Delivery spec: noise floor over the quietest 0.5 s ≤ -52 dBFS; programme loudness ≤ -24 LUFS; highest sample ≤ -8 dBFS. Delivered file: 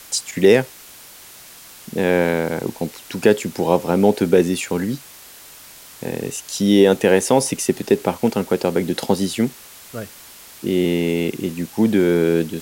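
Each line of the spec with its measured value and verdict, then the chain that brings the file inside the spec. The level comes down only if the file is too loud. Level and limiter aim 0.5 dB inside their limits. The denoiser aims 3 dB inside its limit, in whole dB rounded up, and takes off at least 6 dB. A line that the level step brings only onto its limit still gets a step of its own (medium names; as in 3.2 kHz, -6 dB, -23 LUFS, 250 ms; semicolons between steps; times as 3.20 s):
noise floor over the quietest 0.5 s -42 dBFS: fail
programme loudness -19.0 LUFS: fail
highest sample -2.0 dBFS: fail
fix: noise reduction 8 dB, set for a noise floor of -42 dBFS; trim -5.5 dB; peak limiter -8.5 dBFS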